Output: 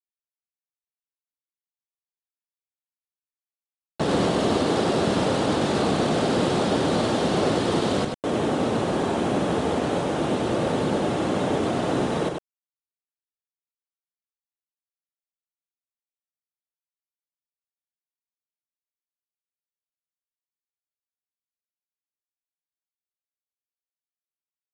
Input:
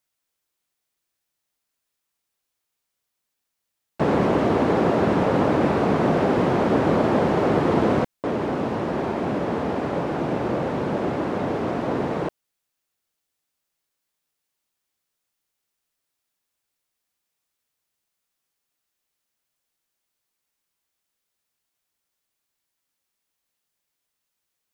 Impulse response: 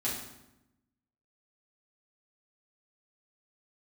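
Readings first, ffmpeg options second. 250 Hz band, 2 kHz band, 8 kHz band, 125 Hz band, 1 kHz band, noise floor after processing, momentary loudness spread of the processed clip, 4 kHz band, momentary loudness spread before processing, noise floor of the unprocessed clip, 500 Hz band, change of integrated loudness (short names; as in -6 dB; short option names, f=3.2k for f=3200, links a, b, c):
-1.5 dB, -0.5 dB, n/a, -1.5 dB, -2.0 dB, under -85 dBFS, 3 LU, +9.0 dB, 6 LU, -81 dBFS, -1.5 dB, -1.0 dB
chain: -filter_complex "[0:a]bandreject=f=990:w=21,afftfilt=real='re*gte(hypot(re,im),0.00631)':imag='im*gte(hypot(re,im),0.00631)':win_size=1024:overlap=0.75,acrossover=split=1900[a][b];[a]alimiter=limit=-14.5dB:level=0:latency=1:release=347[c];[b]asoftclip=type=hard:threshold=-39dB[d];[c][d]amix=inputs=2:normalize=0,aexciter=amount=4.7:drive=4.8:freq=3.2k,acrusher=bits=5:mix=0:aa=0.5,asplit=2[e][f];[f]aecho=0:1:96:0.596[g];[e][g]amix=inputs=2:normalize=0,aresample=22050,aresample=44100"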